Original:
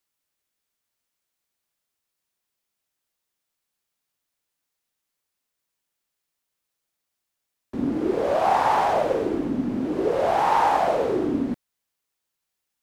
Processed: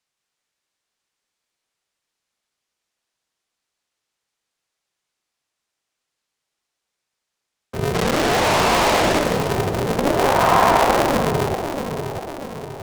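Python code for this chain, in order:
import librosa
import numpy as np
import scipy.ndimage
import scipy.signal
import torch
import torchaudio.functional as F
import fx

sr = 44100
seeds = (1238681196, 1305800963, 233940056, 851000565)

y = fx.schmitt(x, sr, flips_db=-26.0, at=(7.94, 9.19))
y = fx.bandpass_edges(y, sr, low_hz=210.0, high_hz=7700.0)
y = fx.echo_split(y, sr, split_hz=700.0, low_ms=643, high_ms=174, feedback_pct=52, wet_db=-6.5)
y = y * np.sign(np.sin(2.0 * np.pi * 140.0 * np.arange(len(y)) / sr))
y = y * librosa.db_to_amplitude(4.0)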